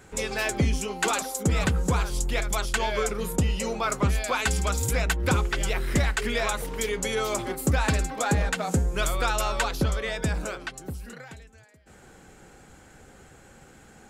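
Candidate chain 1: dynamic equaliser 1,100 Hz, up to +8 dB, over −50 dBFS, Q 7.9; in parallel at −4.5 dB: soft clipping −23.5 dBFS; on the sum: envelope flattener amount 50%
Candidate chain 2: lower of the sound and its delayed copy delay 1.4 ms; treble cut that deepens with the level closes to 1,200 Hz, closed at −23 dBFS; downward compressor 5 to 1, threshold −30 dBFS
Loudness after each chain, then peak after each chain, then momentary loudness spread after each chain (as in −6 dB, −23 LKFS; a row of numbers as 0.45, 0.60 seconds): −21.0, −35.5 LKFS; −8.5, −17.0 dBFS; 12, 19 LU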